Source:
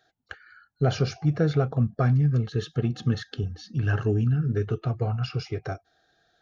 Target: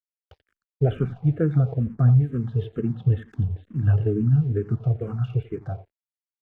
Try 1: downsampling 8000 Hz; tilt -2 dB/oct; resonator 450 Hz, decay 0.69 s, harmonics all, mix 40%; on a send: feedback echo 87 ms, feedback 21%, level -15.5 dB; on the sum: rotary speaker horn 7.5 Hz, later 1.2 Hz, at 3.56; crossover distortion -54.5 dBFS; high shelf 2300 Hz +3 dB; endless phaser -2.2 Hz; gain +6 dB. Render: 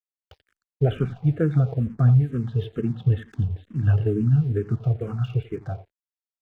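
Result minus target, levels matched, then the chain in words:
4000 Hz band +5.5 dB
downsampling 8000 Hz; tilt -2 dB/oct; resonator 450 Hz, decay 0.69 s, harmonics all, mix 40%; on a send: feedback echo 87 ms, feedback 21%, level -15.5 dB; on the sum: rotary speaker horn 7.5 Hz, later 1.2 Hz, at 3.56; crossover distortion -54.5 dBFS; high shelf 2300 Hz -5.5 dB; endless phaser -2.2 Hz; gain +6 dB

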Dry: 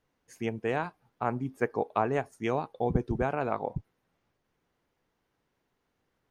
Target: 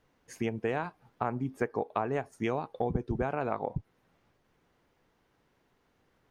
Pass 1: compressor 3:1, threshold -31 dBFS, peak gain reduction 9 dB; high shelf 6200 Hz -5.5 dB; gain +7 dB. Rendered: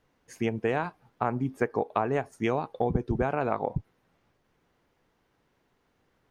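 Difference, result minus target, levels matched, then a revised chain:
compressor: peak gain reduction -4 dB
compressor 3:1, threshold -37 dBFS, peak gain reduction 13 dB; high shelf 6200 Hz -5.5 dB; gain +7 dB

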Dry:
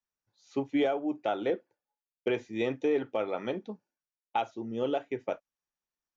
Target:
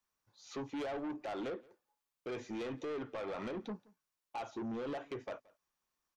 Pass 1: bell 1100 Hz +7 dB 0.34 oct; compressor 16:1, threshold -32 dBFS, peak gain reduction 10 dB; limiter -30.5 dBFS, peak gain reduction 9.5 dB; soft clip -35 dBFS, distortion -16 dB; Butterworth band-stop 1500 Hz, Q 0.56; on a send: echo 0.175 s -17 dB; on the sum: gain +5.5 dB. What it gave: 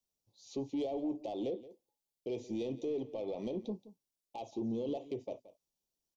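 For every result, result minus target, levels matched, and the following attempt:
2000 Hz band -15.5 dB; echo-to-direct +7.5 dB; soft clip: distortion -7 dB
bell 1100 Hz +7 dB 0.34 oct; compressor 16:1, threshold -32 dBFS, peak gain reduction 10 dB; limiter -30.5 dBFS, peak gain reduction 9.5 dB; soft clip -35 dBFS, distortion -16 dB; on a send: echo 0.175 s -17 dB; on the sum: gain +5.5 dB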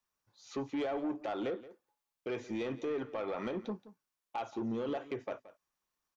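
echo-to-direct +7.5 dB; soft clip: distortion -7 dB
bell 1100 Hz +7 dB 0.34 oct; compressor 16:1, threshold -32 dBFS, peak gain reduction 10 dB; limiter -30.5 dBFS, peak gain reduction 9.5 dB; soft clip -35 dBFS, distortion -16 dB; on a send: echo 0.175 s -24.5 dB; on the sum: gain +5.5 dB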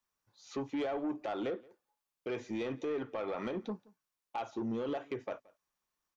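soft clip: distortion -7 dB
bell 1100 Hz +7 dB 0.34 oct; compressor 16:1, threshold -32 dBFS, peak gain reduction 10 dB; limiter -30.5 dBFS, peak gain reduction 9.5 dB; soft clip -42 dBFS, distortion -9 dB; on a send: echo 0.175 s -24.5 dB; on the sum: gain +5.5 dB

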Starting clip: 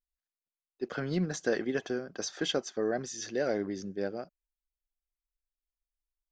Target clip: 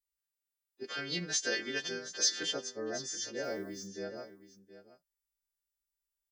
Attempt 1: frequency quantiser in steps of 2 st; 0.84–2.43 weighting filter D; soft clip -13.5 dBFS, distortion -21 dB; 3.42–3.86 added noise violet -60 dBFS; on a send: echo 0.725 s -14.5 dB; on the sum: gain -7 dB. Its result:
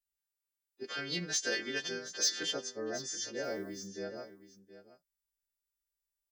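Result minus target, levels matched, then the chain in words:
soft clip: distortion +14 dB
frequency quantiser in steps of 2 st; 0.84–2.43 weighting filter D; soft clip -5 dBFS, distortion -35 dB; 3.42–3.86 added noise violet -60 dBFS; on a send: echo 0.725 s -14.5 dB; on the sum: gain -7 dB

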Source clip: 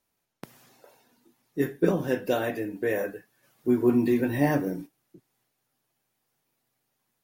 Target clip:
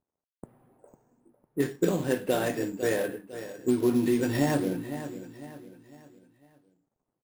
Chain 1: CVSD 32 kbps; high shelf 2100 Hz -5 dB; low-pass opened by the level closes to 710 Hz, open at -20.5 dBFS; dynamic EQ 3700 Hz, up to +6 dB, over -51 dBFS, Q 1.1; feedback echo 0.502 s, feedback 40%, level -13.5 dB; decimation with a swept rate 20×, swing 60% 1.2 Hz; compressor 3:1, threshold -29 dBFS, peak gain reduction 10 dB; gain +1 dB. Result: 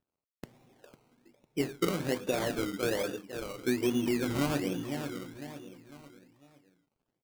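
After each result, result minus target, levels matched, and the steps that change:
decimation with a swept rate: distortion +12 dB; compressor: peak gain reduction +5 dB
change: decimation with a swept rate 5×, swing 60% 1.2 Hz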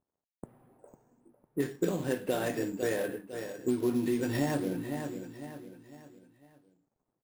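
compressor: peak gain reduction +5 dB
change: compressor 3:1, threshold -21.5 dBFS, peak gain reduction 5 dB

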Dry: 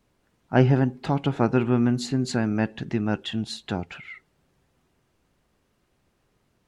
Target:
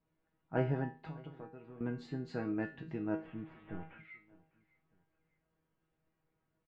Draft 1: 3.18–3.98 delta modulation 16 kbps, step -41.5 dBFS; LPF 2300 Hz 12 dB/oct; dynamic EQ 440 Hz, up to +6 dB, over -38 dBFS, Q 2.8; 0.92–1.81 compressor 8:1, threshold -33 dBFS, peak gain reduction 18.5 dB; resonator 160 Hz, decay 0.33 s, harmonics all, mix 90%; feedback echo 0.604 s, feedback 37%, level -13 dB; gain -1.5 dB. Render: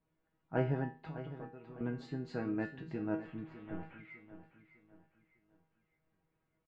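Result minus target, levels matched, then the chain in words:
echo-to-direct +10 dB
3.18–3.98 delta modulation 16 kbps, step -41.5 dBFS; LPF 2300 Hz 12 dB/oct; dynamic EQ 440 Hz, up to +6 dB, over -38 dBFS, Q 2.8; 0.92–1.81 compressor 8:1, threshold -33 dBFS, peak gain reduction 18.5 dB; resonator 160 Hz, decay 0.33 s, harmonics all, mix 90%; feedback echo 0.604 s, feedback 37%, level -23 dB; gain -1.5 dB

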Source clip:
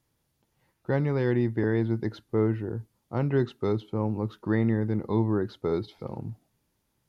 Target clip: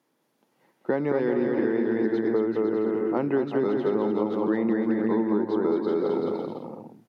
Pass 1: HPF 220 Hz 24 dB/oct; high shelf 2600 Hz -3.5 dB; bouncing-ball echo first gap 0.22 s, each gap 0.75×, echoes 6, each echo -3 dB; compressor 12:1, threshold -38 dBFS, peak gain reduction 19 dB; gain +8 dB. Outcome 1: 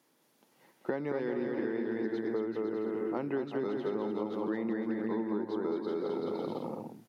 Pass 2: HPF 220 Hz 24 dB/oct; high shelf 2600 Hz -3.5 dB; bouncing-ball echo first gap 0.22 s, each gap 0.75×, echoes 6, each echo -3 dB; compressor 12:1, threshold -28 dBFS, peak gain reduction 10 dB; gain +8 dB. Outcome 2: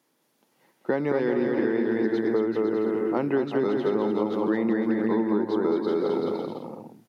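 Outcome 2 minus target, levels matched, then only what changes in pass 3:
4000 Hz band +4.5 dB
change: high shelf 2600 Hz -10.5 dB

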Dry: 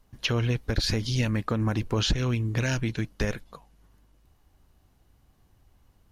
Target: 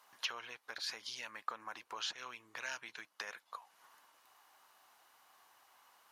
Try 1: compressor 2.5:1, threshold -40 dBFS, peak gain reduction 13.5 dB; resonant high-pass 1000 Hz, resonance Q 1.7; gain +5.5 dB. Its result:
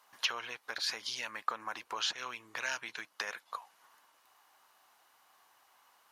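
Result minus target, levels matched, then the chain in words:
compressor: peak gain reduction -6.5 dB
compressor 2.5:1, threshold -50.5 dBFS, peak gain reduction 20 dB; resonant high-pass 1000 Hz, resonance Q 1.7; gain +5.5 dB

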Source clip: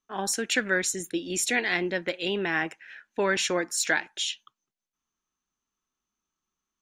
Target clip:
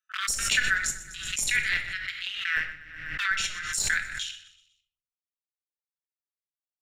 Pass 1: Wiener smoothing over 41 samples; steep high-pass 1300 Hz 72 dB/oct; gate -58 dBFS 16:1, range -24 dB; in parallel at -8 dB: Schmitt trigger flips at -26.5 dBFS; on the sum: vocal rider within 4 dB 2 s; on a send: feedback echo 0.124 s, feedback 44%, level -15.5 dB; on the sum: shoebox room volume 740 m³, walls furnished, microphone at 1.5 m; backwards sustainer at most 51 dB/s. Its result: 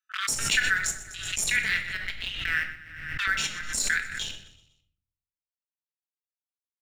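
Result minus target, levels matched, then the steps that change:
Schmitt trigger: distortion -11 dB
change: Schmitt trigger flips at -20 dBFS

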